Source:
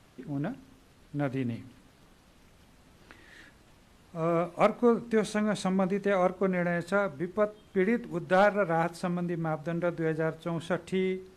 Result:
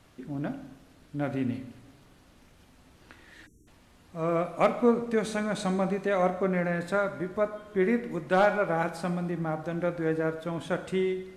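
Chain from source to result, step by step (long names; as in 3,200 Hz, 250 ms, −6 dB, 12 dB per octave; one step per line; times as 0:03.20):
coupled-rooms reverb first 0.89 s, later 3.1 s, from −18 dB, DRR 8 dB
time-frequency box erased 0:03.47–0:03.67, 460–5,500 Hz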